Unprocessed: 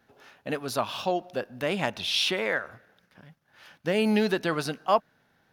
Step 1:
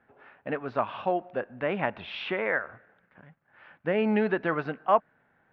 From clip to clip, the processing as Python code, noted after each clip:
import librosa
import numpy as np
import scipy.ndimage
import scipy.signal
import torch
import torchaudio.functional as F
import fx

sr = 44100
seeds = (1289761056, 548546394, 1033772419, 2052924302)

y = scipy.signal.sosfilt(scipy.signal.butter(4, 2200.0, 'lowpass', fs=sr, output='sos'), x)
y = fx.low_shelf(y, sr, hz=380.0, db=-4.5)
y = F.gain(torch.from_numpy(y), 1.5).numpy()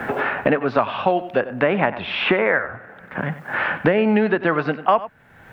y = x + 10.0 ** (-16.0 / 20.0) * np.pad(x, (int(94 * sr / 1000.0), 0))[:len(x)]
y = fx.band_squash(y, sr, depth_pct=100)
y = F.gain(torch.from_numpy(y), 8.5).numpy()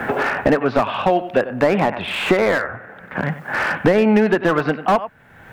y = fx.slew_limit(x, sr, full_power_hz=160.0)
y = F.gain(torch.from_numpy(y), 3.0).numpy()